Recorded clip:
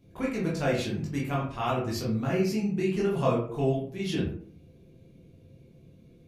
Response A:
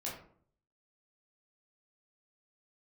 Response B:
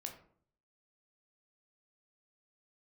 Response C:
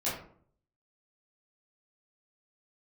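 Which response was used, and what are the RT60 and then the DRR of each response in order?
A; 0.55, 0.55, 0.55 seconds; −6.0, 2.5, −10.5 decibels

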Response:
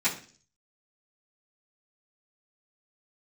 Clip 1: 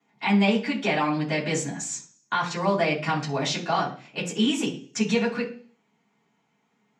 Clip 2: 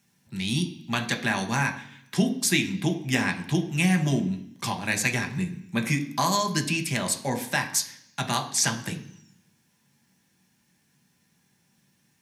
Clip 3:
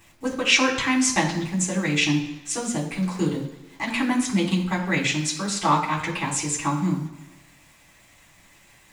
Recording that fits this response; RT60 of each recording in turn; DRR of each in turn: 1; 0.45, 0.65, 1.1 seconds; −14.0, 3.5, −6.5 decibels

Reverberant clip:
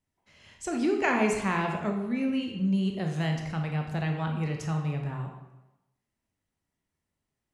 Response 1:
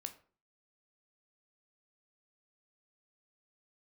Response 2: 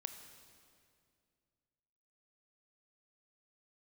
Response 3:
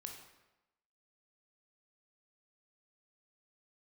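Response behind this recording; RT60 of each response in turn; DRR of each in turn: 3; 0.45, 2.3, 1.0 seconds; 7.0, 7.5, 2.0 decibels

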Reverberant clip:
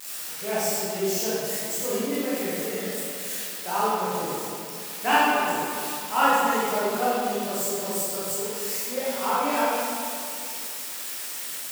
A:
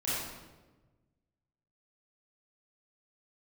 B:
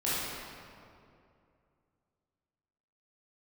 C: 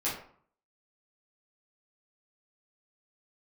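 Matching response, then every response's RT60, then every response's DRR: B; 1.2, 2.5, 0.55 seconds; −10.5, −10.5, −9.5 decibels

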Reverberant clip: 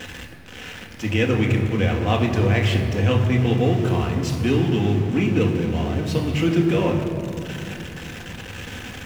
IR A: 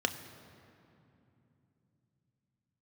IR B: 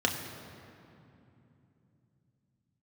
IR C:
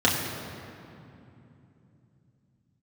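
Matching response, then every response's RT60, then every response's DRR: B; 2.9, 2.9, 2.9 seconds; 7.0, 1.0, −5.5 decibels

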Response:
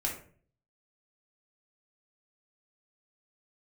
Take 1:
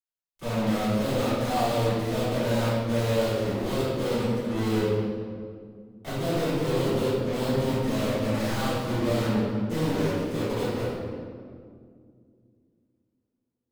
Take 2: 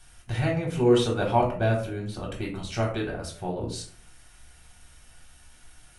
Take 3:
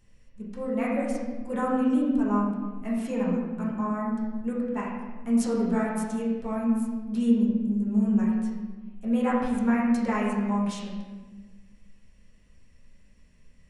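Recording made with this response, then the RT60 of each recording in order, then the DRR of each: 2; 2.2, 0.45, 1.3 seconds; −15.0, −3.0, −6.0 decibels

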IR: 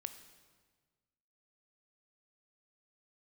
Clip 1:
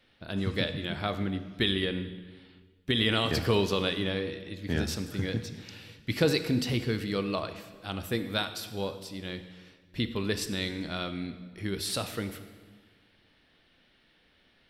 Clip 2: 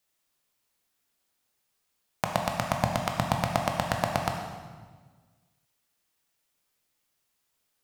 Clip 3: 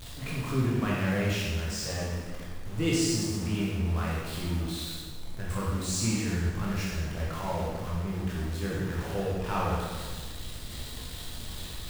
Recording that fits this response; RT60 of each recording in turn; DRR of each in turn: 1; 1.5, 1.5, 1.5 seconds; 9.5, 2.0, −6.0 decibels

